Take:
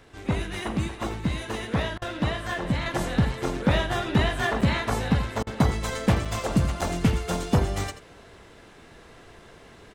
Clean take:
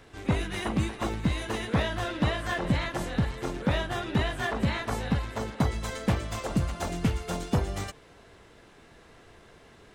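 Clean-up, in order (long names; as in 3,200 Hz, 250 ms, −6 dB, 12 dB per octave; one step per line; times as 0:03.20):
repair the gap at 0:04.61/0:06.25/0:06.81, 5.2 ms
repair the gap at 0:01.98/0:05.43, 37 ms
echo removal 84 ms −13 dB
level correction −4.5 dB, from 0:02.86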